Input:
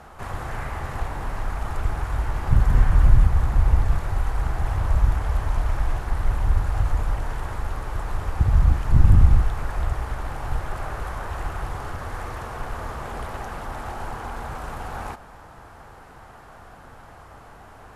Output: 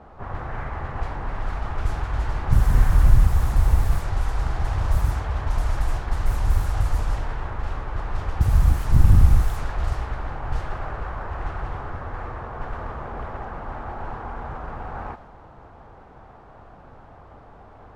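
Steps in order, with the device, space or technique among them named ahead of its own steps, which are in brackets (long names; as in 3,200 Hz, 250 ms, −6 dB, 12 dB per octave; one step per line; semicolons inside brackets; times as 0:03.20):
0:04.97–0:05.46: high-pass filter 49 Hz
cassette deck with a dynamic noise filter (white noise bed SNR 24 dB; low-pass that shuts in the quiet parts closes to 860 Hz, open at −14.5 dBFS)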